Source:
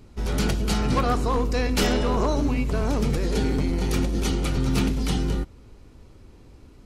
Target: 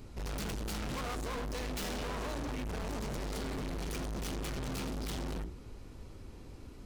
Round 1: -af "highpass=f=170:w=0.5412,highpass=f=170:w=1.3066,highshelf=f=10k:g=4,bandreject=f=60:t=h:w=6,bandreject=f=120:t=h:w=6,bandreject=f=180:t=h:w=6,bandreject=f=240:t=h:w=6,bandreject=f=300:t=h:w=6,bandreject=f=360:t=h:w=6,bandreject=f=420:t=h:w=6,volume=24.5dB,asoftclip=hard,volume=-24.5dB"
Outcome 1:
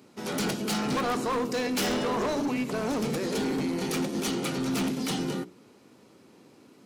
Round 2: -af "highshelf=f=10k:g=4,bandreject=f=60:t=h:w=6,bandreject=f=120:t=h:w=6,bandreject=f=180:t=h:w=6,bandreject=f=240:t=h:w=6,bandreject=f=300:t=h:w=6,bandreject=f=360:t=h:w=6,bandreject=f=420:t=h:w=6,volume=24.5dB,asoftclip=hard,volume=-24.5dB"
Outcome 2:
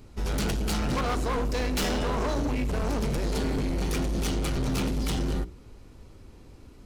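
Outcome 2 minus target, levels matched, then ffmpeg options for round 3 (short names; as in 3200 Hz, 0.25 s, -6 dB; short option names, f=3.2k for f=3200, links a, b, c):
overloaded stage: distortion -5 dB
-af "highshelf=f=10k:g=4,bandreject=f=60:t=h:w=6,bandreject=f=120:t=h:w=6,bandreject=f=180:t=h:w=6,bandreject=f=240:t=h:w=6,bandreject=f=300:t=h:w=6,bandreject=f=360:t=h:w=6,bandreject=f=420:t=h:w=6,volume=36.5dB,asoftclip=hard,volume=-36.5dB"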